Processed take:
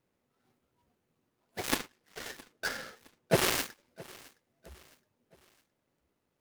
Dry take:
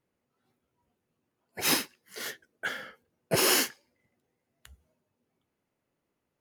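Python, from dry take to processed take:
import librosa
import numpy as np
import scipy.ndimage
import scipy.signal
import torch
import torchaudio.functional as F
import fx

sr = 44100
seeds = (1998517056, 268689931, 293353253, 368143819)

y = fx.dead_time(x, sr, dead_ms=0.17)
y = fx.high_shelf(y, sr, hz=9600.0, db=-6.0, at=(1.76, 3.35))
y = fx.echo_feedback(y, sr, ms=665, feedback_pct=42, wet_db=-22)
y = y * 10.0 ** (2.5 / 20.0)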